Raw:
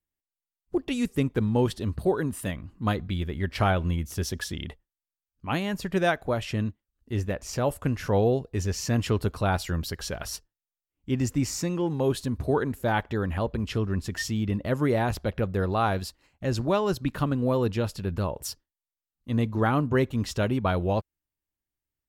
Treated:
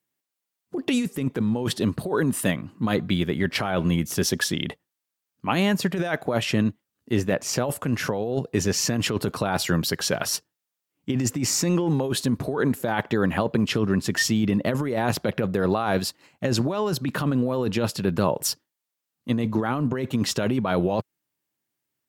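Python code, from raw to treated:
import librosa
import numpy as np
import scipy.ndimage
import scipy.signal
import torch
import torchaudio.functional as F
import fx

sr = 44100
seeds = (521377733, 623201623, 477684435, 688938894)

y = scipy.signal.sosfilt(scipy.signal.butter(4, 130.0, 'highpass', fs=sr, output='sos'), x)
y = fx.over_compress(y, sr, threshold_db=-29.0, ratio=-1.0)
y = y * librosa.db_to_amplitude(6.5)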